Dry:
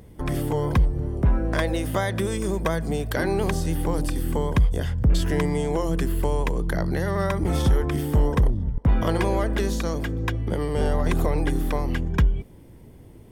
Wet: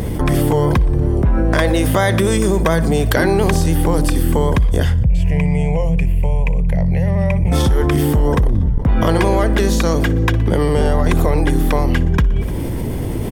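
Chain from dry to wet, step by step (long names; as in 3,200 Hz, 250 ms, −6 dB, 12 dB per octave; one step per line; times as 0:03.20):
0:05.03–0:07.52: drawn EQ curve 170 Hz 0 dB, 320 Hz −22 dB, 520 Hz −6 dB, 950 Hz −11 dB, 1,400 Hz −28 dB, 2,400 Hz +2 dB, 3,600 Hz −20 dB, 7,500 Hz −15 dB, 11,000 Hz −18 dB
repeating echo 60 ms, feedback 59%, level −20 dB
envelope flattener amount 70%
level +3 dB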